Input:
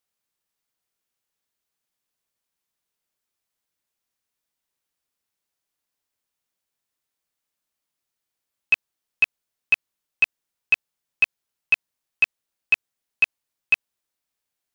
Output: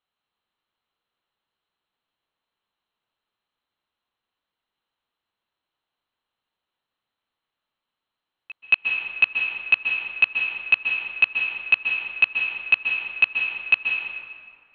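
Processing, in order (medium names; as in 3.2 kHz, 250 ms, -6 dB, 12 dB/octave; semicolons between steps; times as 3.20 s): rippled Chebyshev low-pass 4.2 kHz, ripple 6 dB; pre-echo 225 ms -22 dB; on a send at -1.5 dB: reverberation RT60 2.1 s, pre-delay 122 ms; on the sum: trim +5.5 dB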